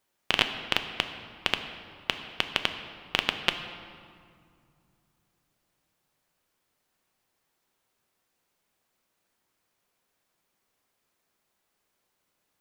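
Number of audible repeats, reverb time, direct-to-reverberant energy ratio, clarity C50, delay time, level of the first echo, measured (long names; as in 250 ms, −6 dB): no echo audible, 2.3 s, 7.0 dB, 9.0 dB, no echo audible, no echo audible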